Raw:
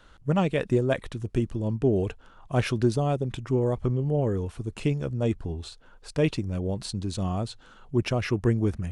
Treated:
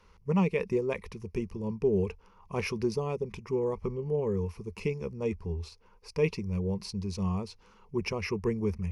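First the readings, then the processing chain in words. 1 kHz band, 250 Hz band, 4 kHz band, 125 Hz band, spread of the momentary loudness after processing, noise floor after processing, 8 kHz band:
−6.0 dB, −5.0 dB, −6.0 dB, −7.5 dB, 10 LU, −60 dBFS, −5.5 dB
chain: EQ curve with evenly spaced ripples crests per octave 0.83, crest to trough 14 dB
level −6.5 dB

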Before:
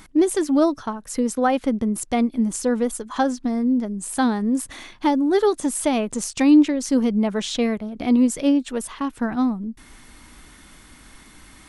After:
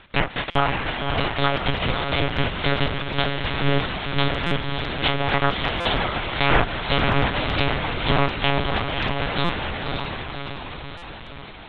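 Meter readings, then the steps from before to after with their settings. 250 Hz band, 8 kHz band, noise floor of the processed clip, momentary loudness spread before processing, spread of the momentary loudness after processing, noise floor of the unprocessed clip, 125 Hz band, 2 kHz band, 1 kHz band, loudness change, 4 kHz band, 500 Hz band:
−10.5 dB, below −30 dB, −38 dBFS, 8 LU, 10 LU, −48 dBFS, can't be measured, +10.5 dB, +3.5 dB, −2.0 dB, +11.0 dB, −2.5 dB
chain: compressing power law on the bin magnitudes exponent 0.1
treble cut that deepens with the level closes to 2,100 Hz, closed at −13 dBFS
noise reduction from a noise print of the clip's start 12 dB
downward compressor 4 to 1, threshold −30 dBFS, peak gain reduction 12 dB
high-frequency loss of the air 99 metres
feedback delay with all-pass diffusion 563 ms, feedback 60%, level −4 dB
one-pitch LPC vocoder at 8 kHz 140 Hz
boost into a limiter +16.5 dB
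buffer that repeats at 0:00.50/0:04.46/0:05.80/0:09.44/0:10.97, samples 256, times 8
level −1 dB
AAC 64 kbit/s 22,050 Hz

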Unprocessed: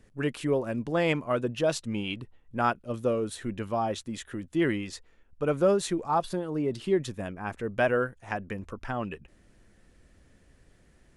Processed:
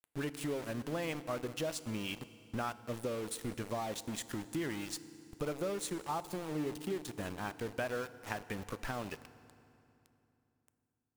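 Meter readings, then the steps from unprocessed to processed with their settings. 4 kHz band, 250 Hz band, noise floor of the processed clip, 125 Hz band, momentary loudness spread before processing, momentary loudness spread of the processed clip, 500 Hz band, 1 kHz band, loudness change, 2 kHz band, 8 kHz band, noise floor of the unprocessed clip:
−5.0 dB, −9.0 dB, −82 dBFS, −8.5 dB, 12 LU, 5 LU, −11.5 dB, −10.0 dB, −10.0 dB, −9.0 dB, −1.5 dB, −61 dBFS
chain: high-shelf EQ 6,700 Hz +11 dB
downward compressor 4 to 1, threshold −43 dBFS, peak gain reduction 20.5 dB
centre clipping without the shift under −46.5 dBFS
feedback delay network reverb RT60 2.9 s, low-frequency decay 1.3×, high-frequency decay 0.85×, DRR 14 dB
level +5 dB

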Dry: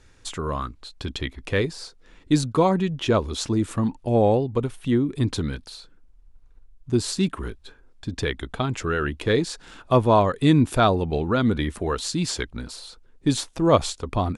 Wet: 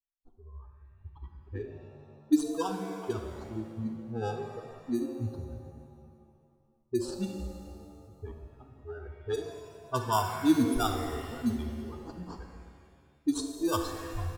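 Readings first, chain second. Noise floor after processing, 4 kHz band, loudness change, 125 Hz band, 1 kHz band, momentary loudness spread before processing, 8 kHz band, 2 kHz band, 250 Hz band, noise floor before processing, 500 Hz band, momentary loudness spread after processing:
−66 dBFS, −13.0 dB, −9.5 dB, −14.0 dB, −10.0 dB, 17 LU, −10.5 dB, −13.5 dB, −8.0 dB, −54 dBFS, −13.0 dB, 22 LU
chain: spectral dynamics exaggerated over time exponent 3
in parallel at −5.5 dB: decimation without filtering 21×
on the sum: dynamic equaliser 680 Hz, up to −5 dB, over −36 dBFS, Q 0.71
phaser with its sweep stopped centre 560 Hz, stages 6
on a send: single-tap delay 72 ms −14.5 dB
on the sum: low-pass that shuts in the quiet parts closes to 300 Hz, open at −24 dBFS
reverb with rising layers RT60 2 s, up +7 semitones, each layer −8 dB, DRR 5 dB
level −1.5 dB

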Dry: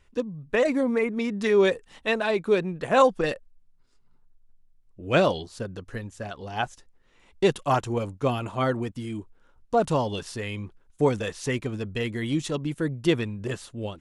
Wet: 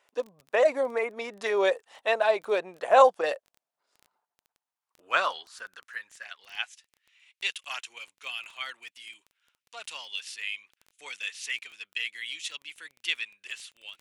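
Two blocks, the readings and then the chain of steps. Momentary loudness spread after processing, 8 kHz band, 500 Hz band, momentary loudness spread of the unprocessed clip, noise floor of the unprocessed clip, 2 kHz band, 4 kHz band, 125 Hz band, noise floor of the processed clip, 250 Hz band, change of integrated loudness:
19 LU, −1.5 dB, −3.5 dB, 14 LU, −61 dBFS, 0.0 dB, +1.5 dB, below −30 dB, below −85 dBFS, −19.0 dB, −2.5 dB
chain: high-pass filter sweep 650 Hz → 2,500 Hz, 0:03.99–0:06.80
surface crackle 14 per second −37 dBFS
level −2.5 dB

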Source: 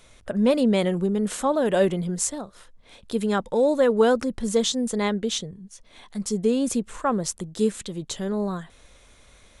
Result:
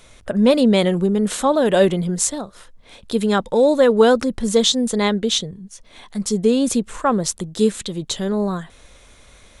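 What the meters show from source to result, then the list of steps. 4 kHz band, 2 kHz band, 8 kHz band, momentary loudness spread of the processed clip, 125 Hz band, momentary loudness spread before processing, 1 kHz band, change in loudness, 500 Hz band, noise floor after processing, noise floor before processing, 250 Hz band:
+9.0 dB, +6.0 dB, +6.0 dB, 11 LU, +5.5 dB, 12 LU, +5.5 dB, +5.5 dB, +5.5 dB, −48 dBFS, −54 dBFS, +5.5 dB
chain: dynamic equaliser 3,800 Hz, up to +5 dB, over −48 dBFS, Q 2.8
level +5.5 dB

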